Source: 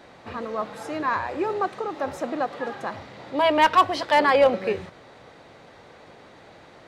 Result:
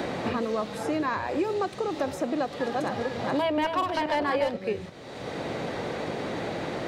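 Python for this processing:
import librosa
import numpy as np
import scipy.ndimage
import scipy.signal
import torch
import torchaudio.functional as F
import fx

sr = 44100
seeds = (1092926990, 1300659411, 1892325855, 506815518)

y = fx.reverse_delay_fb(x, sr, ms=243, feedback_pct=42, wet_db=-3.5, at=(2.36, 4.57))
y = fx.peak_eq(y, sr, hz=1200.0, db=-8.0, octaves=2.1)
y = fx.band_squash(y, sr, depth_pct=100)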